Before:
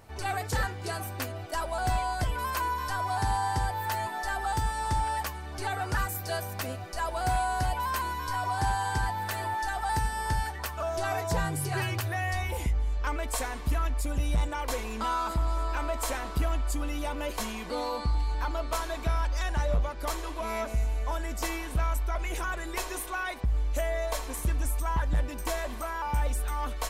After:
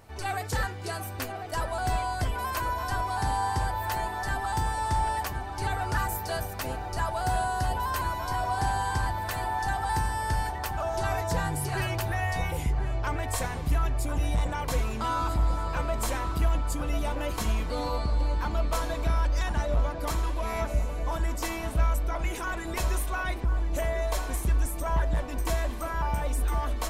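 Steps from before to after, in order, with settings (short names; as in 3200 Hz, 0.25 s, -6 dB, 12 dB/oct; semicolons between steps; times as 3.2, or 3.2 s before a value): 7.22–7.96 notch 2300 Hz, Q 6.5; darkening echo 1.046 s, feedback 81%, low-pass 880 Hz, level -5.5 dB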